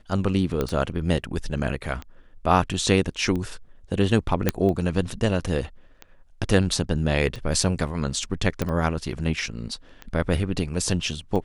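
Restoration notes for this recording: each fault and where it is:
scratch tick 45 rpm −20 dBFS
0:00.61: click −12 dBFS
0:04.49: click −5 dBFS
0:08.62: click −11 dBFS

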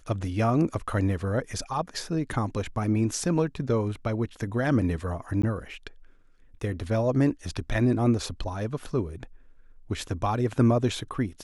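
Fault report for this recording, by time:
0:05.42–0:05.43: drop-out 14 ms

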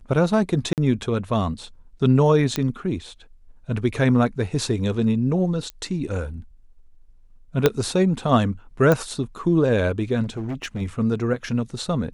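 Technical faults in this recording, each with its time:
0:00.73–0:00.78: drop-out 48 ms
0:02.56: click −8 dBFS
0:05.70: click −19 dBFS
0:07.66: click −2 dBFS
0:08.92: click −7 dBFS
0:10.23–0:10.82: clipping −24 dBFS

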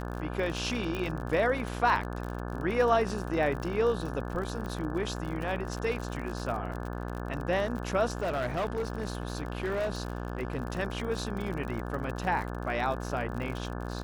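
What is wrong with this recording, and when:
mains buzz 60 Hz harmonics 29 −36 dBFS
surface crackle 47 per second −35 dBFS
0:00.95: click −21 dBFS
0:04.66: click −26 dBFS
0:08.12–0:10.62: clipping −26.5 dBFS

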